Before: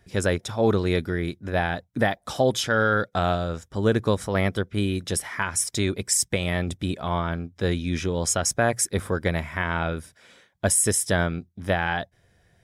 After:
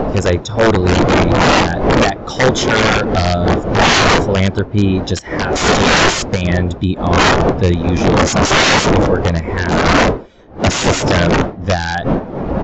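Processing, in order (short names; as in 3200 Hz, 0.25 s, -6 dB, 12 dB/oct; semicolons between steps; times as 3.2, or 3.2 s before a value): wind noise 600 Hz -20 dBFS; high shelf 3900 Hz +7.5 dB; in parallel at +2.5 dB: compressor 16:1, threshold -33 dBFS, peak gain reduction 28 dB; on the sum: wrapped overs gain 11 dB; downsampling 16000 Hz; spectral expander 1.5:1; gain +6 dB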